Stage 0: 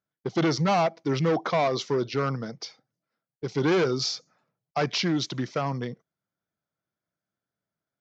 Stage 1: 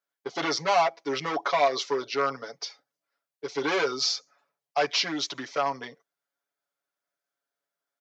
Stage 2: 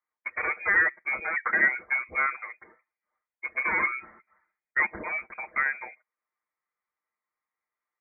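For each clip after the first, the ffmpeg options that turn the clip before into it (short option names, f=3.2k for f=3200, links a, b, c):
-af "highpass=530,aecho=1:1:7.1:0.9"
-af "lowpass=f=2.2k:t=q:w=0.5098,lowpass=f=2.2k:t=q:w=0.6013,lowpass=f=2.2k:t=q:w=0.9,lowpass=f=2.2k:t=q:w=2.563,afreqshift=-2600"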